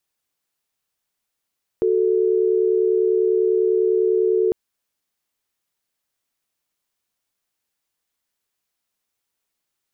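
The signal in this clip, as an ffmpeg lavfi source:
ffmpeg -f lavfi -i "aevalsrc='0.126*(sin(2*PI*369.99*t)+sin(2*PI*440*t))':duration=2.7:sample_rate=44100" out.wav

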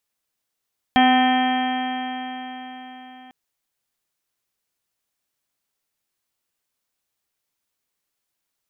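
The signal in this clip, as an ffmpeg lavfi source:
ffmpeg -f lavfi -i "aevalsrc='0.168*pow(10,-3*t/4.57)*sin(2*PI*254.09*t)+0.02*pow(10,-3*t/4.57)*sin(2*PI*508.72*t)+0.2*pow(10,-3*t/4.57)*sin(2*PI*764.43*t)+0.0376*pow(10,-3*t/4.57)*sin(2*PI*1021.75*t)+0.0316*pow(10,-3*t/4.57)*sin(2*PI*1281.22*t)+0.0282*pow(10,-3*t/4.57)*sin(2*PI*1543.35*t)+0.0794*pow(10,-3*t/4.57)*sin(2*PI*1808.66*t)+0.0237*pow(10,-3*t/4.57)*sin(2*PI*2077.65*t)+0.0422*pow(10,-3*t/4.57)*sin(2*PI*2350.82*t)+0.0168*pow(10,-3*t/4.57)*sin(2*PI*2628.62*t)+0.0168*pow(10,-3*t/4.57)*sin(2*PI*2911.54*t)+0.0668*pow(10,-3*t/4.57)*sin(2*PI*3200.02*t)':duration=2.35:sample_rate=44100" out.wav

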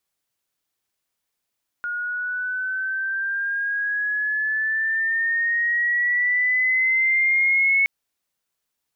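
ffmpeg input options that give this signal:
ffmpeg -f lavfi -i "aevalsrc='pow(10,(-15+9.5*(t/6.02-1))/20)*sin(2*PI*1430*6.02/(7.5*log(2)/12)*(exp(7.5*log(2)/12*t/6.02)-1))':duration=6.02:sample_rate=44100" out.wav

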